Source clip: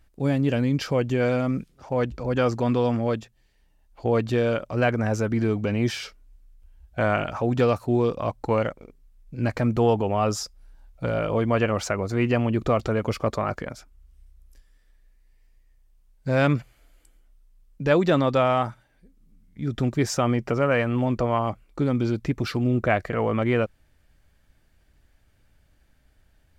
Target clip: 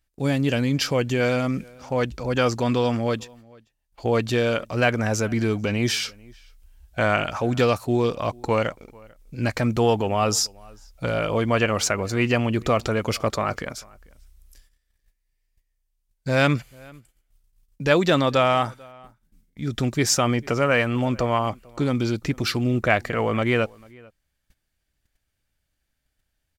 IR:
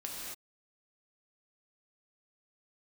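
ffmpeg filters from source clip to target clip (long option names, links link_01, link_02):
-filter_complex "[0:a]agate=range=-16dB:threshold=-54dB:ratio=16:detection=peak,highshelf=frequency=2100:gain=11,asplit=2[link_01][link_02];[link_02]adelay=443.1,volume=-25dB,highshelf=frequency=4000:gain=-9.97[link_03];[link_01][link_03]amix=inputs=2:normalize=0"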